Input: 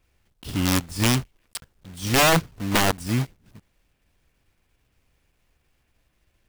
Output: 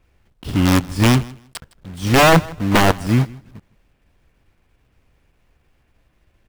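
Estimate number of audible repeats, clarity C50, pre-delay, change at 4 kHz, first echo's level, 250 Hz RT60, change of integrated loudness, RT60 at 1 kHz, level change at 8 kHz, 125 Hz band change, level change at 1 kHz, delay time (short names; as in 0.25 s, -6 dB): 1, none, none, +2.5 dB, -22.0 dB, none, +6.0 dB, none, -0.5 dB, +8.0 dB, +7.0 dB, 0.16 s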